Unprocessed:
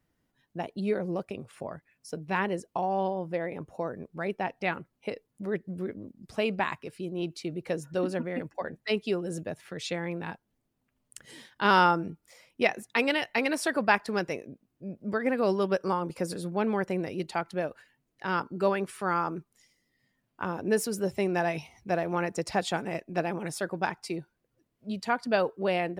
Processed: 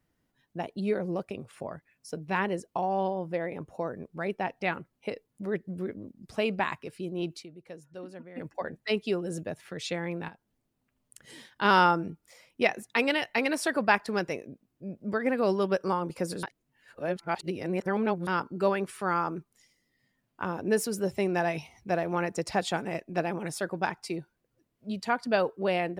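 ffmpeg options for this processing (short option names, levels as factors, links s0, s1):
-filter_complex "[0:a]asettb=1/sr,asplit=3[s0][s1][s2];[s0]atrim=end=10.284[s3];[s1]atrim=start=10.28:end=11.3,asetpts=PTS-STARTPTS,afade=t=in:d=0.004:c=qsin,afade=t=out:st=1.016:d=0.004:c=qsin,acompressor=threshold=0.00447:ratio=3:attack=3.2:release=140:knee=1:detection=peak[s4];[s2]atrim=start=11.296[s5];[s3][s4]acrossfade=d=0.004:c1=hsin:c2=qsin[s6];[s6][s5]acrossfade=d=0.004:c1=qsin:c2=hsin,asplit=5[s7][s8][s9][s10][s11];[s7]atrim=end=7.46,asetpts=PTS-STARTPTS,afade=t=out:st=7.33:d=0.13:c=qsin:silence=0.211349[s12];[s8]atrim=start=7.46:end=8.35,asetpts=PTS-STARTPTS,volume=0.211[s13];[s9]atrim=start=8.35:end=16.432,asetpts=PTS-STARTPTS,afade=t=in:d=0.13:c=qsin:silence=0.211349[s14];[s10]atrim=start=16.428:end=18.272,asetpts=PTS-STARTPTS,areverse[s15];[s11]atrim=start=18.268[s16];[s12][s13][s14]concat=n=3:v=0:a=1[s17];[s17][s15]acrossfade=d=0.004:c1=hsin:c2=hsin[s18];[s18][s16]acrossfade=d=0.004:c1=hsin:c2=hsin"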